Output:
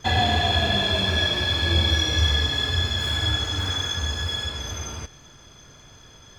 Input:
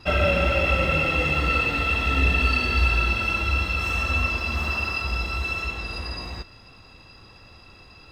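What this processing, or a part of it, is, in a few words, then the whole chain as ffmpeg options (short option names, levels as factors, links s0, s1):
nightcore: -af "asetrate=56007,aresample=44100"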